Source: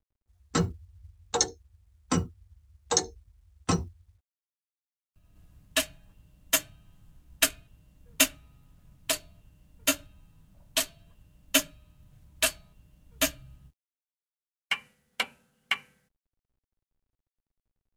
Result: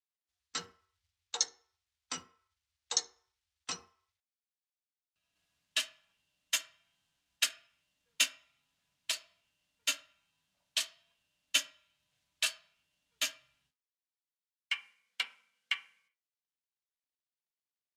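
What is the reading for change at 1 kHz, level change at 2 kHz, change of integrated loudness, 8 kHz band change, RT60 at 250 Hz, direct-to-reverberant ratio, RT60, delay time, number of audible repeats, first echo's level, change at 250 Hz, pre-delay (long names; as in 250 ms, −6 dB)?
−12.5 dB, −6.0 dB, −6.0 dB, −7.0 dB, 0.35 s, 8.5 dB, 0.50 s, no echo audible, no echo audible, no echo audible, −25.0 dB, 3 ms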